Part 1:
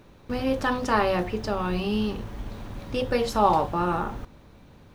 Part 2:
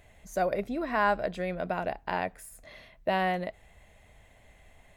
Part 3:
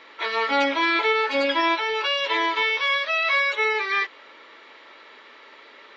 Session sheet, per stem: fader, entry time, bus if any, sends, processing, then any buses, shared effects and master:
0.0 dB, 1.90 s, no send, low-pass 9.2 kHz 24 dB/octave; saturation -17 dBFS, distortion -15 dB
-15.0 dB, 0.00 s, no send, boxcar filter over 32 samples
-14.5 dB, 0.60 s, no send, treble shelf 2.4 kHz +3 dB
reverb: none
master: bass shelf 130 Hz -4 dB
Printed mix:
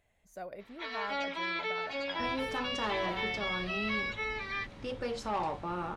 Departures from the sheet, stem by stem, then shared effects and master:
stem 1 0.0 dB -> -9.5 dB; stem 2: missing boxcar filter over 32 samples

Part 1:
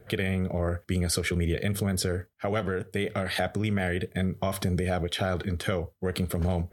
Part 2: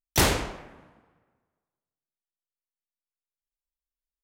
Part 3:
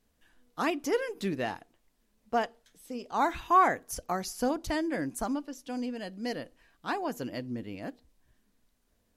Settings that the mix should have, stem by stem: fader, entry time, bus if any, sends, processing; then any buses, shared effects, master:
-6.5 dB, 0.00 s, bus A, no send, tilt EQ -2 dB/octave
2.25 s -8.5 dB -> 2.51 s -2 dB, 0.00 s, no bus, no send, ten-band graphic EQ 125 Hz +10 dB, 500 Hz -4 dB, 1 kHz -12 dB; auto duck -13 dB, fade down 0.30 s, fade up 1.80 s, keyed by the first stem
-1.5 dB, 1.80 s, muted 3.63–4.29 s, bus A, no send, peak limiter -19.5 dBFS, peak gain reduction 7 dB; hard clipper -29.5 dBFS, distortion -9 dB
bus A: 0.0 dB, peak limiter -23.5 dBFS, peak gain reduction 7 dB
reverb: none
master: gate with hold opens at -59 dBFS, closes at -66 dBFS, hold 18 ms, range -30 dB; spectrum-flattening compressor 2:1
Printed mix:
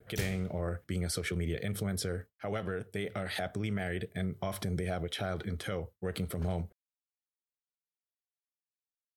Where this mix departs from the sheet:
stem 1: missing tilt EQ -2 dB/octave; stem 3: muted; master: missing spectrum-flattening compressor 2:1

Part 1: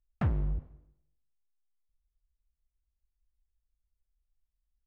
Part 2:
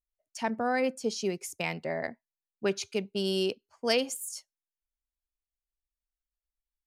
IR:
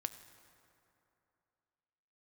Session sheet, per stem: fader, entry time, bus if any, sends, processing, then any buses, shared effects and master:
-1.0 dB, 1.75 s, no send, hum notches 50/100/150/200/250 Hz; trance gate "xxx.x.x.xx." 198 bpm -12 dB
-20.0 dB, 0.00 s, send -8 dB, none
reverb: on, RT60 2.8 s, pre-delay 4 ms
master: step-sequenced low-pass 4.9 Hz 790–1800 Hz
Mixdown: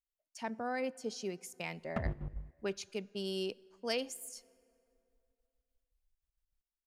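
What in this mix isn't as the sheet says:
stem 2 -20.0 dB -> -11.0 dB; master: missing step-sequenced low-pass 4.9 Hz 790–1800 Hz

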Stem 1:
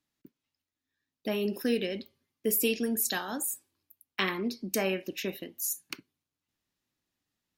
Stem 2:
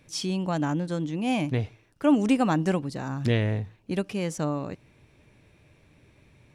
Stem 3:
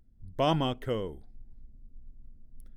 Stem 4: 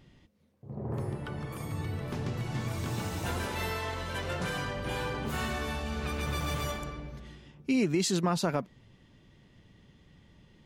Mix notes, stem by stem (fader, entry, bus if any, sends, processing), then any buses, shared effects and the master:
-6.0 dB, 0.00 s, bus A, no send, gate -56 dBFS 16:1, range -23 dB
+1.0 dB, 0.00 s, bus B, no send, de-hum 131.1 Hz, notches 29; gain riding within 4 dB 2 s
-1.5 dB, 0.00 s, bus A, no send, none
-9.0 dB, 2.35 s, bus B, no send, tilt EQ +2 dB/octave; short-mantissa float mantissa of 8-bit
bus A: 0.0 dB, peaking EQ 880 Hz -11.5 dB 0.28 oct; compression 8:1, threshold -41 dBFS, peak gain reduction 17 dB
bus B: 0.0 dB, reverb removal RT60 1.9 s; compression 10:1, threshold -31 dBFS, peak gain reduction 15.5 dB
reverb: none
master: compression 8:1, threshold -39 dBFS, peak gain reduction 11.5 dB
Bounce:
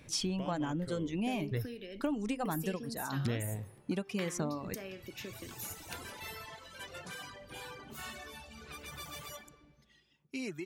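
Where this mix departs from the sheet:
stem 3 -1.5 dB -> -9.5 dB; stem 4: entry 2.35 s -> 2.65 s; master: missing compression 8:1, threshold -39 dBFS, peak gain reduction 11.5 dB

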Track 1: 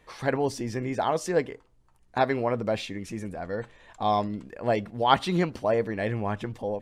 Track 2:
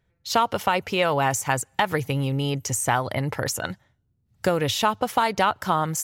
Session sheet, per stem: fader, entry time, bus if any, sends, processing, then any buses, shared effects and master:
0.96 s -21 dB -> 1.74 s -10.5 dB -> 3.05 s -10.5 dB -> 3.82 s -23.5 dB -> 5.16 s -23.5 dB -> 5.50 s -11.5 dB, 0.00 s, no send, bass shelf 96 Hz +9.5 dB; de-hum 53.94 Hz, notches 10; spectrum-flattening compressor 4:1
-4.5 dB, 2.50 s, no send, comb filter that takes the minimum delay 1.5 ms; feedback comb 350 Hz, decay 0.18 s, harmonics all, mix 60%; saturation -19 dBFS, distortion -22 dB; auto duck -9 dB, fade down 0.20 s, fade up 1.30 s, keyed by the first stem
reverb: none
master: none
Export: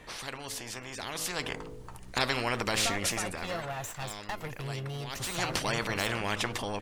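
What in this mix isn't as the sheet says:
stem 1 -21.0 dB -> -15.0 dB; stem 2 -4.5 dB -> +3.5 dB

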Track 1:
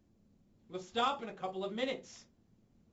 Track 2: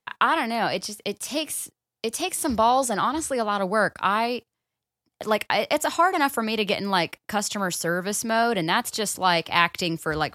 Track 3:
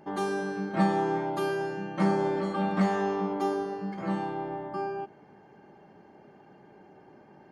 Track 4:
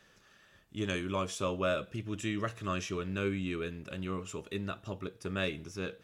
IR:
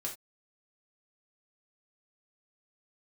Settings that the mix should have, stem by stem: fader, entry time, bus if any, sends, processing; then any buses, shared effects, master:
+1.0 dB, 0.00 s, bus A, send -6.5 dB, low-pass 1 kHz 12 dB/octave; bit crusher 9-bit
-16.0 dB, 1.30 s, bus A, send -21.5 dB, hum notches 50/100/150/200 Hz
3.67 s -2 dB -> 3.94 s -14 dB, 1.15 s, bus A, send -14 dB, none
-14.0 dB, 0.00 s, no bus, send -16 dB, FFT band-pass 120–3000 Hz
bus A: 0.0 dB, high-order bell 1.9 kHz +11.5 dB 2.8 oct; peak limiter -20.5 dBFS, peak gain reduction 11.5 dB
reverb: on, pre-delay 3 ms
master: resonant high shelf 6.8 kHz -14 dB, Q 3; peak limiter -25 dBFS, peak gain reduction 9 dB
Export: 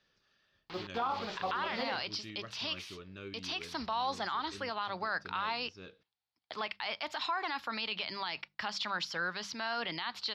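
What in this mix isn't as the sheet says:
stem 1: send off; stem 3: muted; stem 4: missing FFT band-pass 120–3000 Hz

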